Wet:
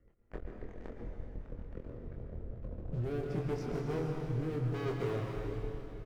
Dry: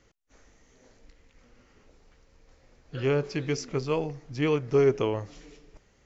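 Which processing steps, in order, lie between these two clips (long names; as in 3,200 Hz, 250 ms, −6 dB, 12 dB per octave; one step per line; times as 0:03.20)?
gate on every frequency bin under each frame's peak −20 dB strong
Bessel low-pass filter 1,300 Hz, order 2
low-shelf EQ 110 Hz +8 dB
leveller curve on the samples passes 5
downward compressor 10 to 1, threshold −42 dBFS, peak gain reduction 27 dB
rotating-speaker cabinet horn 8 Hz, later 0.7 Hz, at 0:02.13
double-tracking delay 25 ms −4.5 dB
dense smooth reverb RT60 3.2 s, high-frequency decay 1×, pre-delay 105 ms, DRR 1 dB
level +4.5 dB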